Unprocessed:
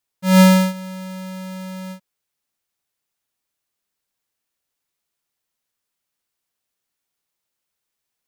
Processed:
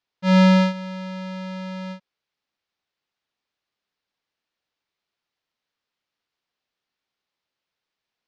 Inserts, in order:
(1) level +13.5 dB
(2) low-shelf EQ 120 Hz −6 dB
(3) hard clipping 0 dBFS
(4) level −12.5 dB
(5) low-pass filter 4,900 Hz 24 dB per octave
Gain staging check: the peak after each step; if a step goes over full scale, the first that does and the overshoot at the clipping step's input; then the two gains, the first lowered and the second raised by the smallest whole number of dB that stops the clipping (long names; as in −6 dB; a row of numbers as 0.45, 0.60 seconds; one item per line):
+6.0, +9.0, 0.0, −12.5, −10.5 dBFS
step 1, 9.0 dB
step 1 +4.5 dB, step 4 −3.5 dB